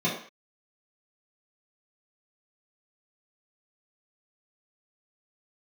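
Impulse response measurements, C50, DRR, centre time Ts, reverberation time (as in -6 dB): 5.0 dB, -8.5 dB, 33 ms, not exponential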